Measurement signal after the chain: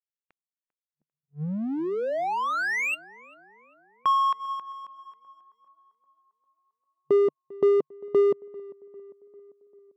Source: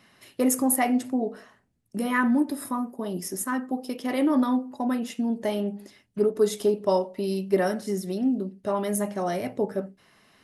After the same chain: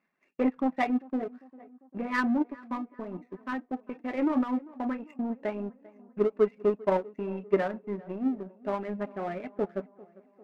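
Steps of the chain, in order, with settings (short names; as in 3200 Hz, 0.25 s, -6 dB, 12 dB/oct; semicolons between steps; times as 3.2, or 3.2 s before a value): reverb removal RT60 0.53 s; FFT band-pass 150–2800 Hz; power-law curve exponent 1.4; tape echo 0.397 s, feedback 63%, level -20 dB, low-pass 1600 Hz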